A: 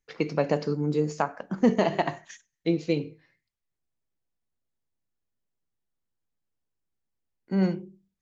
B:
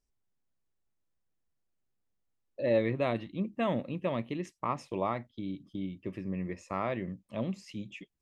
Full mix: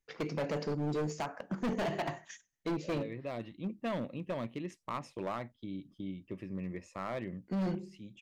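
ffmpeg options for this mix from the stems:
-filter_complex "[0:a]bandreject=f=4.2k:w=15,volume=-3.5dB,asplit=2[a][b];[1:a]adelay=250,volume=-4dB[c];[b]apad=whole_len=373232[d];[c][d]sidechaincompress=threshold=-34dB:ratio=8:attack=33:release=847[e];[a][e]amix=inputs=2:normalize=0,asoftclip=type=hard:threshold=-30dB"

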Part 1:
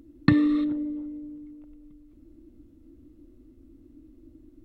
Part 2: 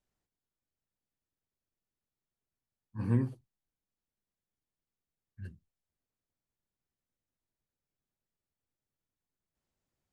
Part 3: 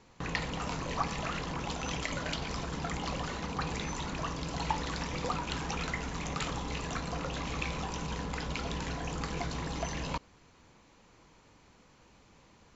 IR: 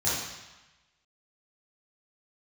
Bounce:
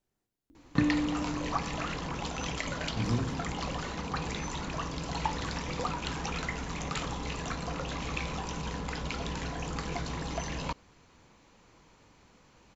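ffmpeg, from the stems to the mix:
-filter_complex "[0:a]adelay=500,volume=-7.5dB[a];[1:a]equalizer=f=320:w=1.5:g=5.5,acompressor=threshold=-29dB:ratio=6,volume=0.5dB,asplit=2[b][c];[c]volume=-17.5dB[d];[2:a]adelay=550,volume=0.5dB[e];[3:a]atrim=start_sample=2205[f];[d][f]afir=irnorm=-1:irlink=0[g];[a][b][e][g]amix=inputs=4:normalize=0"

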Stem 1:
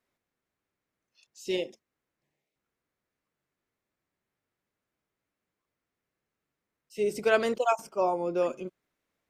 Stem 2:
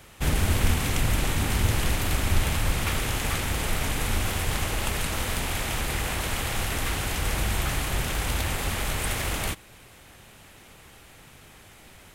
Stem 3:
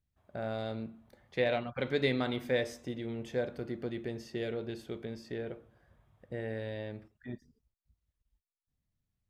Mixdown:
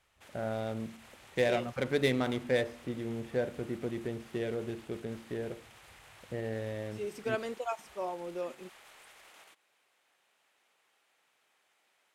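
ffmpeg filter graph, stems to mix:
-filter_complex "[0:a]volume=-10dB[a];[1:a]highpass=570,highshelf=f=10k:g=-10.5,alimiter=level_in=3dB:limit=-24dB:level=0:latency=1:release=117,volume=-3dB,volume=-19.5dB[b];[2:a]adynamicsmooth=sensitivity=7.5:basefreq=1.6k,volume=1.5dB[c];[a][b][c]amix=inputs=3:normalize=0"

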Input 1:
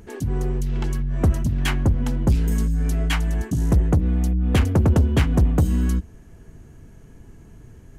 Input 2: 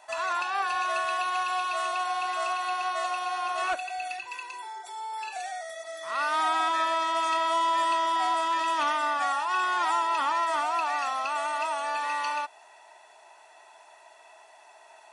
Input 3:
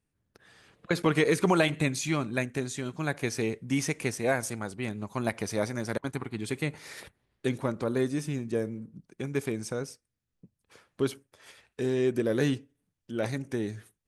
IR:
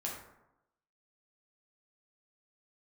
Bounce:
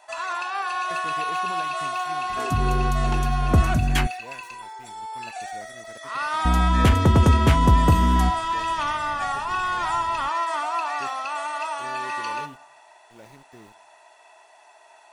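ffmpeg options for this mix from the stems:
-filter_complex "[0:a]adelay=2300,volume=0.5dB,asplit=3[a][b][c];[a]atrim=end=4.07,asetpts=PTS-STARTPTS,afade=t=out:st=4.066:d=0.004:c=hsin[d];[b]atrim=start=4.07:end=6.45,asetpts=PTS-STARTPTS,volume=0[e];[c]atrim=start=6.45,asetpts=PTS-STARTPTS,afade=t=in:d=0.004:c=hsin[f];[d][e][f]concat=n=3:v=0:a=1[g];[1:a]volume=-1dB,asplit=2[h][i];[i]volume=-10.5dB[j];[2:a]aeval=exprs='val(0)*gte(abs(val(0)),0.0211)':c=same,volume=-17.5dB,asplit=2[k][l];[l]volume=-24dB[m];[3:a]atrim=start_sample=2205[n];[j][m]amix=inputs=2:normalize=0[o];[o][n]afir=irnorm=-1:irlink=0[p];[g][h][k][p]amix=inputs=4:normalize=0"

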